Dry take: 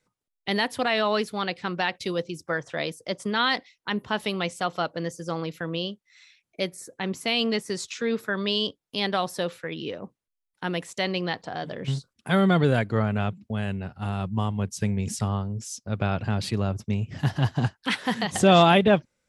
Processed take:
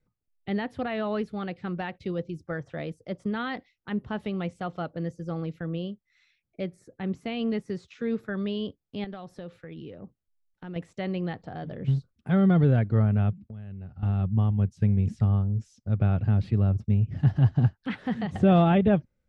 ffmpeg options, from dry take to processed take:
-filter_complex "[0:a]asettb=1/sr,asplit=3[a][b][c];[a]atrim=end=9.044[d];[b]atrim=start=9.04:end=10.76,asetpts=PTS-STARTPTS,afade=t=in:d=0.004:c=qsin,afade=t=out:st=1.716:d=0.004:c=qsin,acompressor=threshold=-38dB:ratio=2:attack=3.2:release=140:knee=1:detection=peak[e];[c]atrim=start=10.756[f];[d][e]acrossfade=d=0.004:c1=hsin:c2=qsin[g];[g][f]acrossfade=d=0.004:c1=qsin:c2=hsin,asettb=1/sr,asplit=3[h][i][j];[h]atrim=end=13.314[k];[i]atrim=start=13.31:end=14.03,asetpts=PTS-STARTPTS,afade=t=in:d=0.004:c=qsin,afade=t=out:st=0.716:d=0.004:c=qsin,acompressor=threshold=-40dB:ratio=5:attack=3.2:release=140:knee=1:detection=peak[l];[j]atrim=start=14.026[m];[k][l]acrossfade=d=0.004:c1=hsin:c2=qsin[n];[n][m]acrossfade=d=0.004:c1=qsin:c2=hsin,aemphasis=mode=reproduction:type=riaa,bandreject=f=990:w=8.5,acrossover=split=3600[o][p];[p]acompressor=threshold=-51dB:ratio=4:attack=1:release=60[q];[o][q]amix=inputs=2:normalize=0,volume=-7.5dB"

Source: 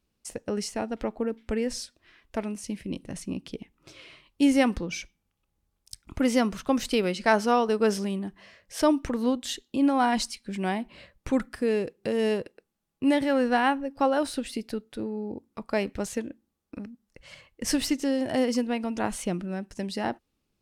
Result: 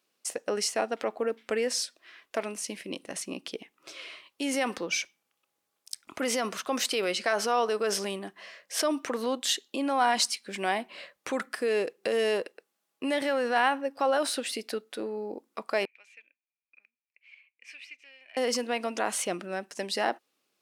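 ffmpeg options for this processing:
-filter_complex "[0:a]asettb=1/sr,asplit=3[a][b][c];[a]atrim=end=15.854[d];[b]atrim=start=15.85:end=18.37,asetpts=PTS-STARTPTS,afade=t=in:d=0.004:c=qsin,afade=t=out:st=2.516:d=0.004:c=qsin,bandpass=f=2.4k:t=q:w=18[e];[c]atrim=start=18.366[f];[d][e]acrossfade=d=0.004:c1=hsin:c2=qsin[g];[g][f]acrossfade=d=0.004:c1=qsin:c2=hsin,alimiter=limit=-20dB:level=0:latency=1:release=31,highpass=500,bandreject=f=890:w=12,volume=6dB"

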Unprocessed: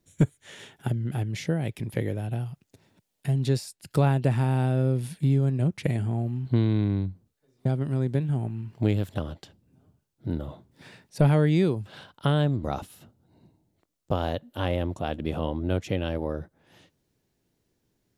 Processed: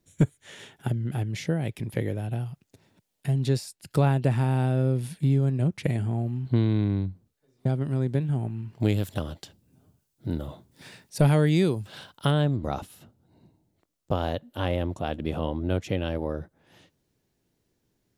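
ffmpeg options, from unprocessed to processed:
-filter_complex "[0:a]asettb=1/sr,asplit=3[a][b][c];[a]atrim=end=8.804[d];[b]atrim=start=8.8:end=12.31,asetpts=PTS-STARTPTS,afade=t=in:d=0.004:c=qsin,afade=t=out:st=3.506:d=0.004:c=qsin,highshelf=f=4.2k:g=9.5[e];[c]atrim=start=12.306[f];[d][e]acrossfade=d=0.004:c1=hsin:c2=qsin[g];[g][f]acrossfade=d=0.004:c1=qsin:c2=hsin"

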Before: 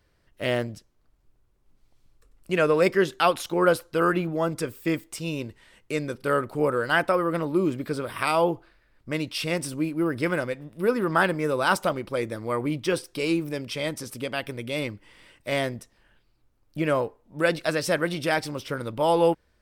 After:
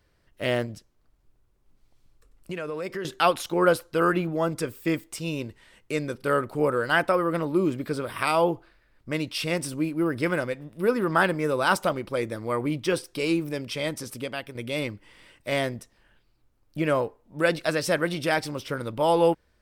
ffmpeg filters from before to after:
-filter_complex "[0:a]asettb=1/sr,asplit=3[a][b][c];[a]atrim=end=0.654[d];[b]atrim=start=0.65:end=3.05,asetpts=PTS-STARTPTS,afade=t=in:d=0.004:c=qsin,afade=t=out:st=2.396:d=0.004:c=qsin,acompressor=threshold=-29dB:ratio=6:attack=3.2:release=140:knee=1:detection=peak[e];[c]atrim=start=3.046[f];[d][e]acrossfade=d=0.004:c1=hsin:c2=qsin[g];[g][f]acrossfade=d=0.004:c1=qsin:c2=hsin,asplit=2[h][i];[h]atrim=end=14.55,asetpts=PTS-STARTPTS,afade=t=out:st=14.14:d=0.41:silence=0.398107[j];[i]atrim=start=14.55,asetpts=PTS-STARTPTS,afade=t=in:d=0.004:c=hsin:silence=0.398107[k];[j][k]concat=n=2:v=0:a=1"

